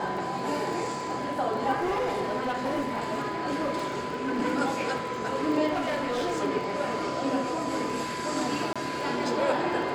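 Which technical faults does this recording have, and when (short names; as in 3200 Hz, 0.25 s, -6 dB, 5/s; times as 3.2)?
crackle 17/s -35 dBFS
tone 1000 Hz -34 dBFS
1.8–4.42 clipped -24 dBFS
5.71–6.42 clipped -25 dBFS
8.73–8.76 gap 26 ms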